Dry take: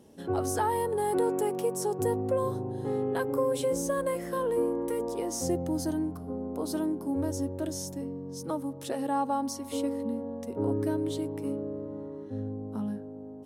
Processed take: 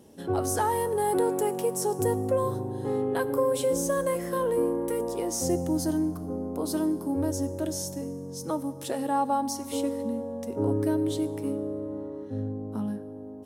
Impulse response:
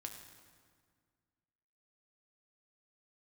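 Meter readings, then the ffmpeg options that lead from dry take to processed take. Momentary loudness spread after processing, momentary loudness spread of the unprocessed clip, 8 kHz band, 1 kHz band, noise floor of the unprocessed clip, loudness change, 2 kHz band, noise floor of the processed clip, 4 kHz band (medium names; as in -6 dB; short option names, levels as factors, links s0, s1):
8 LU, 8 LU, +4.5 dB, +2.5 dB, -42 dBFS, +2.5 dB, +2.5 dB, -40 dBFS, +3.0 dB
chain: -filter_complex "[0:a]asplit=2[s0][s1];[1:a]atrim=start_sample=2205,highshelf=f=5500:g=11[s2];[s1][s2]afir=irnorm=-1:irlink=0,volume=0.501[s3];[s0][s3]amix=inputs=2:normalize=0"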